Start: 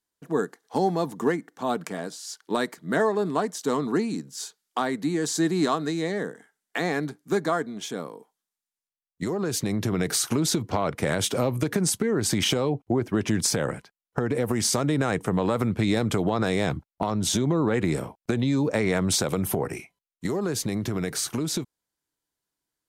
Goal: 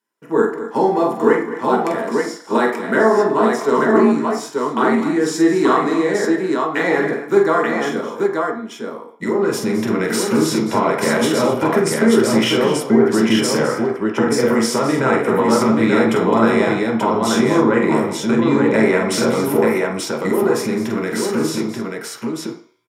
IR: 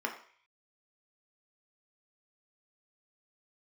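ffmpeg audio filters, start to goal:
-filter_complex "[0:a]aecho=1:1:45|211|255|884:0.531|0.211|0.188|0.708[link_01];[1:a]atrim=start_sample=2205[link_02];[link_01][link_02]afir=irnorm=-1:irlink=0,volume=3dB"

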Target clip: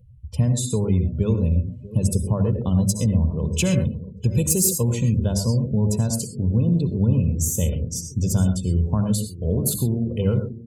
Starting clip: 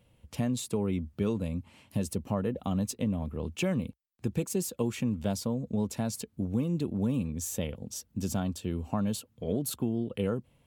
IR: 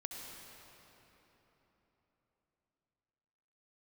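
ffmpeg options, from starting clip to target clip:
-filter_complex "[0:a]bandreject=frequency=50:width_type=h:width=6,bandreject=frequency=100:width_type=h:width=6,bandreject=frequency=150:width_type=h:width=6,bandreject=frequency=200:width_type=h:width=6,bandreject=frequency=250:width_type=h:width=6,bandreject=frequency=300:width_type=h:width=6,bandreject=frequency=350:width_type=h:width=6,aecho=1:1:2:0.42,asplit=2[link_01][link_02];[link_02]adelay=640,lowpass=frequency=3100:poles=1,volume=-16dB,asplit=2[link_03][link_04];[link_04]adelay=640,lowpass=frequency=3100:poles=1,volume=0.55,asplit=2[link_05][link_06];[link_06]adelay=640,lowpass=frequency=3100:poles=1,volume=0.55,asplit=2[link_07][link_08];[link_08]adelay=640,lowpass=frequency=3100:poles=1,volume=0.55,asplit=2[link_09][link_10];[link_10]adelay=640,lowpass=frequency=3100:poles=1,volume=0.55[link_11];[link_01][link_03][link_05][link_07][link_09][link_11]amix=inputs=6:normalize=0[link_12];[1:a]atrim=start_sample=2205,atrim=end_sample=6174[link_13];[link_12][link_13]afir=irnorm=-1:irlink=0,acompressor=mode=upward:threshold=-56dB:ratio=2.5,asettb=1/sr,asplit=3[link_14][link_15][link_16];[link_14]atrim=end=3.374[link_17];[link_15]atrim=start=3.37:end=4.78,asetpts=PTS-STARTPTS,afade=type=in:duration=0.004:curve=qsin,afade=type=out:start_time=1.406:duration=0.004:curve=qsin,highshelf=frequency=2100:gain=6[link_18];[link_16]atrim=start=4.776[link_19];[link_17][link_18]acrossfade=duration=0.004:curve1=hsin:curve2=qsin[link_20];[link_20][link_19]acrossfade=duration=0.004:curve1=qsin:curve2=hsin,afftdn=noise_reduction=30:noise_floor=-49,bass=frequency=250:gain=14,treble=frequency=4000:gain=10,volume=5.5dB"

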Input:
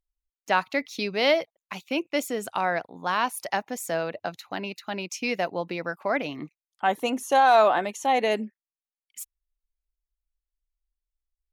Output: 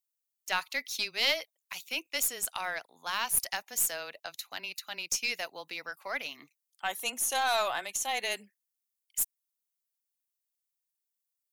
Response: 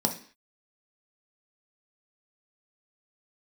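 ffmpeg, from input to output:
-af "aderivative,afreqshift=-13,aeval=exprs='0.106*(cos(1*acos(clip(val(0)/0.106,-1,1)))-cos(1*PI/2))+0.00596*(cos(4*acos(clip(val(0)/0.106,-1,1)))-cos(4*PI/2))':channel_layout=same,volume=7dB"

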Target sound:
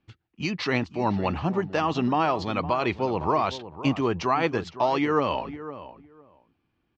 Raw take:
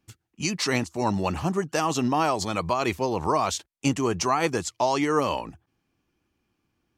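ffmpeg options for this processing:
ffmpeg -i in.wav -filter_complex "[0:a]lowpass=frequency=4000:width=0.5412,lowpass=frequency=4000:width=1.3066,asplit=2[link_01][link_02];[link_02]adelay=509,lowpass=frequency=1500:poles=1,volume=-13dB,asplit=2[link_03][link_04];[link_04]adelay=509,lowpass=frequency=1500:poles=1,volume=0.17[link_05];[link_03][link_05]amix=inputs=2:normalize=0[link_06];[link_01][link_06]amix=inputs=2:normalize=0" out.wav

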